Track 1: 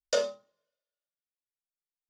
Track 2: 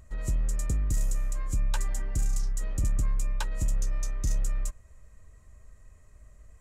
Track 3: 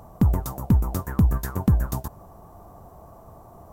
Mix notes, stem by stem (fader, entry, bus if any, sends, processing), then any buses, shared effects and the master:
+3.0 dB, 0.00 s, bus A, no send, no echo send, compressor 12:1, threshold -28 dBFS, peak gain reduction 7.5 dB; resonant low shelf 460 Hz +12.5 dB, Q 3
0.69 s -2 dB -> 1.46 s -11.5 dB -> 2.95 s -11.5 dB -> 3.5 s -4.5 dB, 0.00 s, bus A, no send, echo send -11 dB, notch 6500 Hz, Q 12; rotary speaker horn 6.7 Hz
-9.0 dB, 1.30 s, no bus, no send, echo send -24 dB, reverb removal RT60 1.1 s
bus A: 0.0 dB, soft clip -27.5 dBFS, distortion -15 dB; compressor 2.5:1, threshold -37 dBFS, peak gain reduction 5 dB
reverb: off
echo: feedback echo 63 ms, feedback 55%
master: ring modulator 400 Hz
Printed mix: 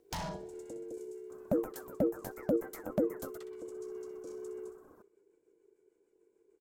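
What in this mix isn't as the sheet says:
stem 1 +3.0 dB -> +14.5 dB; stem 2 -2.0 dB -> -12.5 dB

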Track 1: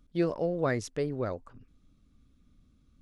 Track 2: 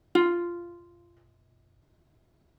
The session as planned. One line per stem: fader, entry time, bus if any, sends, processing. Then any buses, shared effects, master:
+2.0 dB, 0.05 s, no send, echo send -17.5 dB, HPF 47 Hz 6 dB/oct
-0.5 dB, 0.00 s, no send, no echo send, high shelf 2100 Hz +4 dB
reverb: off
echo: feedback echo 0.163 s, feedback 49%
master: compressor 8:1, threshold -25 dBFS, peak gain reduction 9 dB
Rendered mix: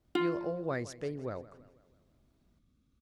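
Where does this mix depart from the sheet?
stem 1 +2.0 dB -> -6.0 dB; stem 2 -0.5 dB -> -8.5 dB

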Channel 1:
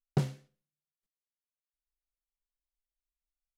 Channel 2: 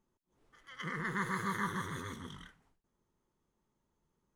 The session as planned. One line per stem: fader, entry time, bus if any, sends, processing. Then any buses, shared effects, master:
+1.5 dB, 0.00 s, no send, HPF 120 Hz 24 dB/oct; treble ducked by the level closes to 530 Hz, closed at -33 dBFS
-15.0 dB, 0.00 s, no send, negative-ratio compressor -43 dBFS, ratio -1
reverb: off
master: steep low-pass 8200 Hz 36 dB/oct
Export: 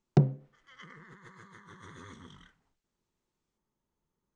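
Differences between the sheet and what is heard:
stem 1 +1.5 dB -> +7.5 dB; stem 2 -15.0 dB -> -9.0 dB

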